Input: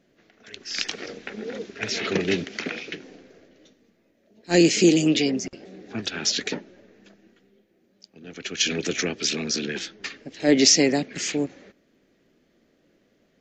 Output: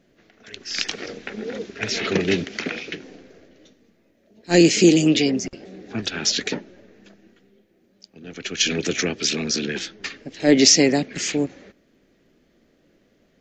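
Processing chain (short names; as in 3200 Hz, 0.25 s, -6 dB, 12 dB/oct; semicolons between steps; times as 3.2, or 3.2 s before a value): low shelf 82 Hz +7 dB; gain +2.5 dB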